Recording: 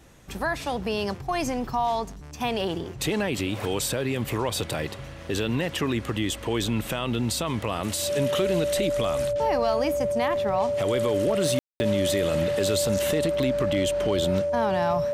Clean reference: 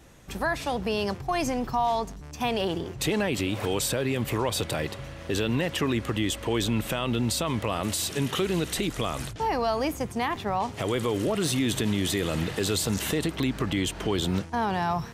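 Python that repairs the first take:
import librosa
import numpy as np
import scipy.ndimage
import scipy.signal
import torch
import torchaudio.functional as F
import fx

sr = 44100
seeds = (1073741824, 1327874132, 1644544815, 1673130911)

y = fx.fix_declip(x, sr, threshold_db=-15.5)
y = fx.notch(y, sr, hz=580.0, q=30.0)
y = fx.fix_ambience(y, sr, seeds[0], print_start_s=0.0, print_end_s=0.5, start_s=11.59, end_s=11.8)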